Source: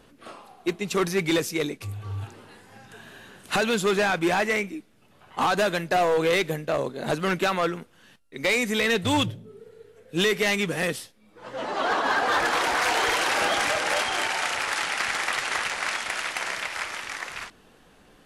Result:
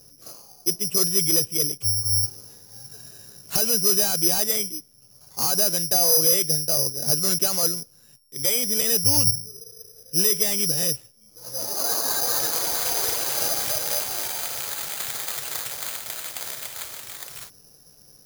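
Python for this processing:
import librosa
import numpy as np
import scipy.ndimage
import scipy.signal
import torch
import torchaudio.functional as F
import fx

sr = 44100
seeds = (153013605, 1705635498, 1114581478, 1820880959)

y = fx.graphic_eq(x, sr, hz=(125, 250, 500, 1000, 2000, 4000), db=(12, -4, 3, -4, -7, 4))
y = (np.kron(scipy.signal.resample_poly(y, 1, 8), np.eye(8)[0]) * 8)[:len(y)]
y = F.gain(torch.from_numpy(y), -6.5).numpy()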